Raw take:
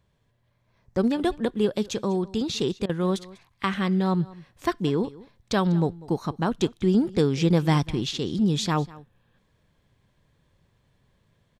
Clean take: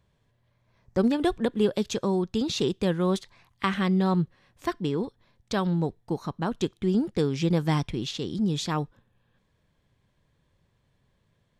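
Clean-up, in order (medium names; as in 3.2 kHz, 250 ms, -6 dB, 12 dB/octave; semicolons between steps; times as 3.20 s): interpolate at 2.86 s, 32 ms; inverse comb 196 ms -20.5 dB; gain correction -3.5 dB, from 4.29 s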